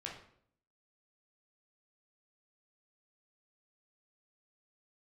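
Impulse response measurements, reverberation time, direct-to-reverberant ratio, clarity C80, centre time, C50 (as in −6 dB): 0.60 s, −2.5 dB, 9.0 dB, 33 ms, 5.0 dB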